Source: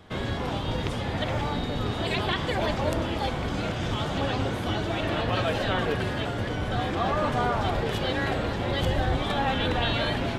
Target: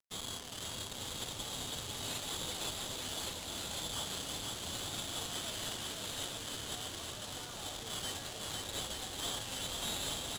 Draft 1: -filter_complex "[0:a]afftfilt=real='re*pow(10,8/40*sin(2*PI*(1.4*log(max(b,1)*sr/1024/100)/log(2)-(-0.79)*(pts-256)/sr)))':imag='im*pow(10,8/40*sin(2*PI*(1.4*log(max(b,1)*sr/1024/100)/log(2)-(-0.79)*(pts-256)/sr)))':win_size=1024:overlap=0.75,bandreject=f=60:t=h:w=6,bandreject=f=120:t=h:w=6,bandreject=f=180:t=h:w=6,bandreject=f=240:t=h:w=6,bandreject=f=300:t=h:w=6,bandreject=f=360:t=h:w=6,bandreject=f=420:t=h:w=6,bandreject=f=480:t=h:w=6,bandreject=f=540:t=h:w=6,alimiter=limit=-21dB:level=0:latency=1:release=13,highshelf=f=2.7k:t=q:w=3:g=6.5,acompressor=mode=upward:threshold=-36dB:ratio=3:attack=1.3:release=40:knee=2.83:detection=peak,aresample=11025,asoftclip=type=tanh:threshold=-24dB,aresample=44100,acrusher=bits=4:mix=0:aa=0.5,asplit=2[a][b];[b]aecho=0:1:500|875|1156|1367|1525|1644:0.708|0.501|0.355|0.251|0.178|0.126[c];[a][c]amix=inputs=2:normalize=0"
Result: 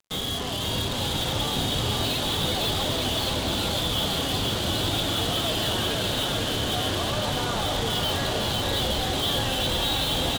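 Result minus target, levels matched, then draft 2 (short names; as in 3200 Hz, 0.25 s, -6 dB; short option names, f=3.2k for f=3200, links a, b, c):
soft clip: distortion -7 dB
-filter_complex "[0:a]afftfilt=real='re*pow(10,8/40*sin(2*PI*(1.4*log(max(b,1)*sr/1024/100)/log(2)-(-0.79)*(pts-256)/sr)))':imag='im*pow(10,8/40*sin(2*PI*(1.4*log(max(b,1)*sr/1024/100)/log(2)-(-0.79)*(pts-256)/sr)))':win_size=1024:overlap=0.75,bandreject=f=60:t=h:w=6,bandreject=f=120:t=h:w=6,bandreject=f=180:t=h:w=6,bandreject=f=240:t=h:w=6,bandreject=f=300:t=h:w=6,bandreject=f=360:t=h:w=6,bandreject=f=420:t=h:w=6,bandreject=f=480:t=h:w=6,bandreject=f=540:t=h:w=6,alimiter=limit=-21dB:level=0:latency=1:release=13,highshelf=f=2.7k:t=q:w=3:g=6.5,acompressor=mode=upward:threshold=-36dB:ratio=3:attack=1.3:release=40:knee=2.83:detection=peak,aresample=11025,asoftclip=type=tanh:threshold=-33dB,aresample=44100,acrusher=bits=4:mix=0:aa=0.5,asplit=2[a][b];[b]aecho=0:1:500|875|1156|1367|1525|1644:0.708|0.501|0.355|0.251|0.178|0.126[c];[a][c]amix=inputs=2:normalize=0"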